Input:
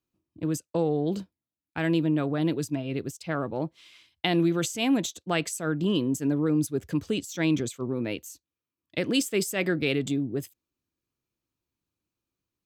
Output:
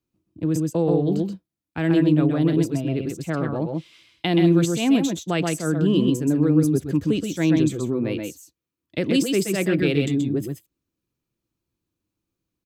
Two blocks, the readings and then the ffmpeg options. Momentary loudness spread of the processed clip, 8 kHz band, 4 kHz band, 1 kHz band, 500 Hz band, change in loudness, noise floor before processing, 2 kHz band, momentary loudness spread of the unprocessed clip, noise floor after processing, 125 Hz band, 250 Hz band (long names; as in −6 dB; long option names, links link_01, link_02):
11 LU, +1.5 dB, +1.5 dB, +2.0 dB, +5.5 dB, +6.0 dB, below −85 dBFS, +1.5 dB, 9 LU, −84 dBFS, +8.0 dB, +7.0 dB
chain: -filter_complex "[0:a]acrossover=split=470[link_01][link_02];[link_01]acontrast=50[link_03];[link_03][link_02]amix=inputs=2:normalize=0,aecho=1:1:124|130:0.316|0.562"